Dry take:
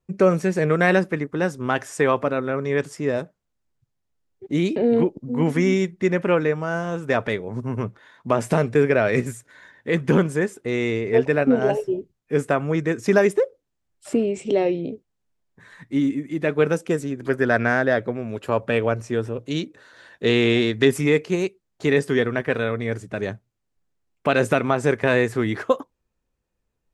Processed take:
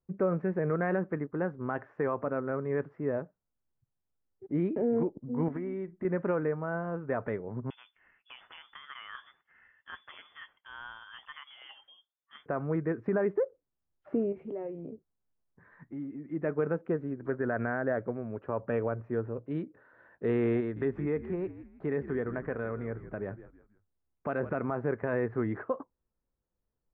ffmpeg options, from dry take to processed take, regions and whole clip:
ffmpeg -i in.wav -filter_complex "[0:a]asettb=1/sr,asplit=3[link_01][link_02][link_03];[link_01]atrim=end=5.484[link_04];[link_02]atrim=start=5.48:end=6.05,asetpts=PTS-STARTPTS,afade=type=in:duration=0.004:curve=qsin,afade=type=out:start_time=0.566:duration=0.004:curve=qsin,aecho=1:1:3.1:0.33,atrim=end_sample=25137,acompressor=threshold=-23dB:ratio=10:attack=3.2:release=140:knee=1:detection=peak[link_05];[link_03]atrim=start=6.046[link_06];[link_04][link_05]acrossfade=duration=0.004:curve1=hsin:curve2=qsin[link_07];[link_07][link_06]acrossfade=duration=0.004:curve1=qsin:curve2=hsin,asettb=1/sr,asplit=3[link_08][link_09][link_10];[link_08]atrim=end=7.704[link_11];[link_09]atrim=start=7.7:end=12.46,asetpts=PTS-STARTPTS,afade=type=in:duration=0.004:curve=qsin,afade=type=out:start_time=4.756:duration=0.004:curve=qsin,equalizer=frequency=780:width_type=o:width=0.67:gain=9.5,acompressor=threshold=-23dB:ratio=2:attack=3.2:release=140:knee=1:detection=peak,lowpass=frequency=3100:width_type=q:width=0.5098,lowpass=frequency=3100:width_type=q:width=0.6013,lowpass=frequency=3100:width_type=q:width=0.9,lowpass=frequency=3100:width_type=q:width=2.563,afreqshift=-3600[link_12];[link_10]atrim=start=12.456[link_13];[link_11][link_12]acrossfade=duration=0.004:curve1=hsin:curve2=qsin[link_14];[link_14][link_13]acrossfade=duration=0.004:curve1=qsin:curve2=hsin,asettb=1/sr,asplit=3[link_15][link_16][link_17];[link_15]atrim=end=14.324[link_18];[link_16]atrim=start=14.32:end=16.28,asetpts=PTS-STARTPTS,afade=type=in:duration=0.004:curve=qsin,afade=type=out:start_time=1.956:duration=0.004:curve=qsin,acompressor=threshold=-31dB:ratio=2.5:attack=3.2:release=140:knee=1:detection=peak,asplit=2[link_19][link_20];[link_20]adelay=13,volume=-12dB[link_21];[link_19][link_21]amix=inputs=2:normalize=0,atrim=end_sample=86436[link_22];[link_17]atrim=start=16.276[link_23];[link_18][link_22]acrossfade=duration=0.004:curve1=hsin:curve2=qsin[link_24];[link_24][link_23]acrossfade=duration=0.004:curve1=qsin:curve2=hsin,asettb=1/sr,asplit=3[link_25][link_26][link_27];[link_25]atrim=end=20.604[link_28];[link_26]atrim=start=20.6:end=24.55,asetpts=PTS-STARTPTS,afade=type=in:duration=0.004:curve=qsin,afade=type=out:start_time=3.946:duration=0.004:curve=qsin,asplit=4[link_29][link_30][link_31][link_32];[link_30]adelay=161,afreqshift=-69,volume=-16dB[link_33];[link_31]adelay=322,afreqshift=-138,volume=-25.1dB[link_34];[link_32]adelay=483,afreqshift=-207,volume=-34.2dB[link_35];[link_29][link_33][link_34][link_35]amix=inputs=4:normalize=0,atrim=end_sample=174195,acompressor=threshold=-25dB:ratio=1.5:attack=3.2:release=140:knee=1:detection=peak[link_36];[link_27]atrim=start=24.546[link_37];[link_28][link_36]acrossfade=duration=0.004:curve1=hsin:curve2=qsin[link_38];[link_38][link_37]acrossfade=duration=0.004:curve1=qsin:curve2=hsin,lowpass=frequency=1600:width=0.5412,lowpass=frequency=1600:width=1.3066,alimiter=limit=-12dB:level=0:latency=1:release=48,volume=-8dB" out.wav

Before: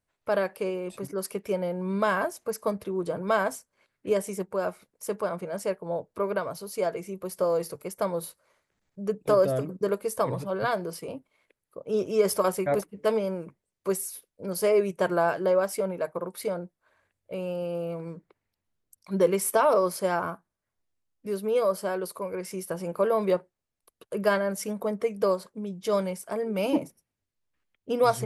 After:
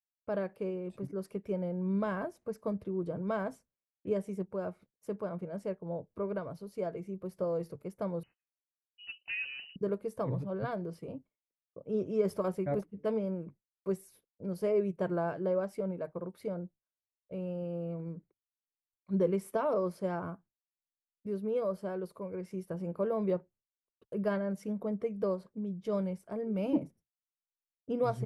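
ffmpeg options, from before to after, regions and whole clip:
ffmpeg -i in.wav -filter_complex "[0:a]asettb=1/sr,asplit=3[link_01][link_02][link_03];[link_01]atrim=end=8.234[link_04];[link_02]atrim=start=8.23:end=9.76,asetpts=PTS-STARTPTS,afade=type=in:duration=0.004:curve=qsin,afade=type=out:start_time=1.526:duration=0.004:curve=qsin,tremolo=f=230:d=0.4,lowpass=frequency=2600:width_type=q:width=0.5098,lowpass=frequency=2600:width_type=q:width=0.6013,lowpass=frequency=2600:width_type=q:width=0.9,lowpass=frequency=2600:width_type=q:width=2.563,afreqshift=-3100[link_05];[link_03]atrim=start=9.756[link_06];[link_04][link_05]acrossfade=duration=0.004:curve1=hsin:curve2=qsin[link_07];[link_07][link_06]acrossfade=duration=0.004:curve1=qsin:curve2=hsin,highshelf=frequency=4800:gain=-8.5,agate=range=-33dB:threshold=-47dB:ratio=3:detection=peak,firequalizer=gain_entry='entry(140,0);entry(430,-7);entry(930,-12);entry(6800,-16)':delay=0.05:min_phase=1" out.wav

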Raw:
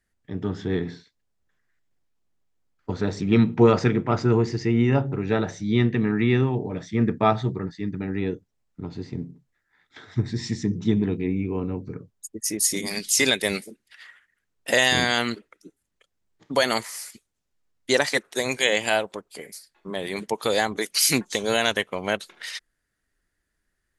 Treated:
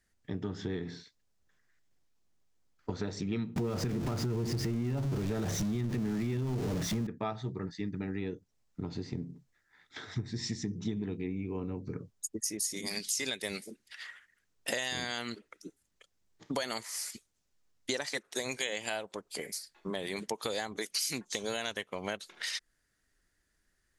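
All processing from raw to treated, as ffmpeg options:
ffmpeg -i in.wav -filter_complex "[0:a]asettb=1/sr,asplit=3[link_01][link_02][link_03];[link_01]atrim=end=3.564[link_04];[link_02]atrim=start=3.56:end=7.07,asetpts=PTS-STARTPTS,afade=type=in:duration=0.004:curve=qsin,afade=type=out:start_time=3.506:duration=0.004:curve=qsin,aeval=exprs='val(0)+0.5*0.0841*sgn(val(0))':channel_layout=same,lowshelf=frequency=430:gain=10.5,acompressor=threshold=-13dB:ratio=2.5:attack=3.2:release=140:knee=1:detection=peak[link_05];[link_03]atrim=start=7.066[link_06];[link_04][link_05]acrossfade=duration=0.004:curve1=hsin:curve2=qsin[link_07];[link_07][link_06]acrossfade=duration=0.004:curve1=qsin:curve2=hsin,equalizer=frequency=5800:width_type=o:width=1.2:gain=5,acompressor=threshold=-33dB:ratio=5" out.wav

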